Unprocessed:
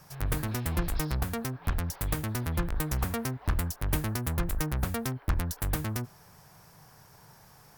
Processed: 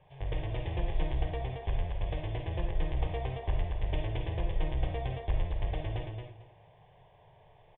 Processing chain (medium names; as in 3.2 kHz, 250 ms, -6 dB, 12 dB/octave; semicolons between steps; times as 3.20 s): Chebyshev low-pass 3.5 kHz, order 8; static phaser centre 560 Hz, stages 4; feedback delay 223 ms, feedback 19%, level -4 dB; on a send at -3 dB: reverberation RT60 0.35 s, pre-delay 10 ms; on the sum: trim -1.5 dB